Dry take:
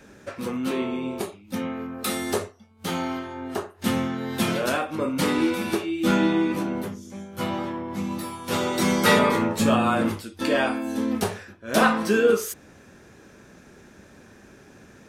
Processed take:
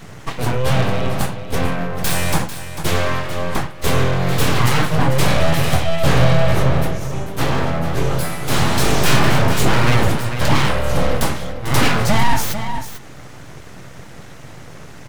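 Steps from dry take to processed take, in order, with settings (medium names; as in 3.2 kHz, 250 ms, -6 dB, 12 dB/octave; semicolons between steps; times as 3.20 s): in parallel at +2 dB: peak limiter -17.5 dBFS, peak gain reduction 11 dB; on the sum: comb 6.7 ms, depth 32%; full-wave rectifier; on a send: delay 445 ms -12 dB; on the sum: saturation -9.5 dBFS, distortion -18 dB; peaking EQ 130 Hz +12 dB 1.3 oct; trim +4.5 dB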